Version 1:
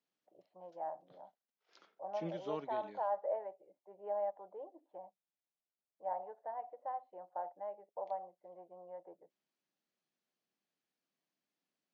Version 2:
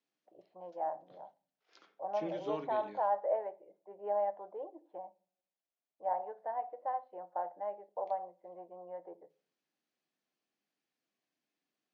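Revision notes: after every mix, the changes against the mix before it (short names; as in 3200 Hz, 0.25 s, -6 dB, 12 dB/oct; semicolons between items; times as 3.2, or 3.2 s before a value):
first voice +4.0 dB; reverb: on, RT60 0.45 s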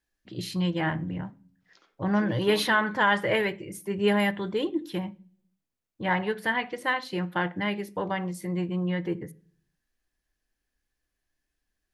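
first voice: remove Butterworth band-pass 690 Hz, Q 2.7; master: remove air absorption 69 m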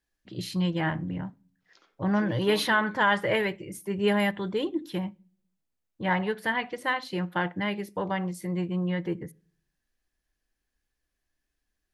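first voice: send -6.5 dB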